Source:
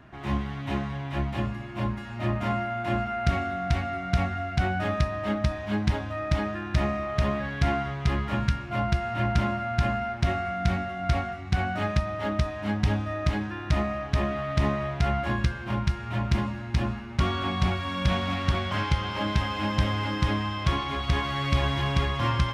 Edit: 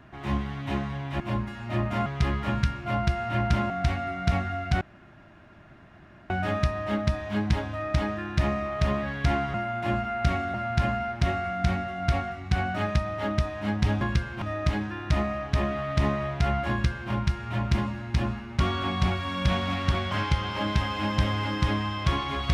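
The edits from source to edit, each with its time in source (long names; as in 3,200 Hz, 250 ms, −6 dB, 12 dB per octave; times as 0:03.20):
0:01.20–0:01.70: remove
0:02.56–0:03.56: swap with 0:07.91–0:09.55
0:04.67: splice in room tone 1.49 s
0:15.30–0:15.71: duplicate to 0:13.02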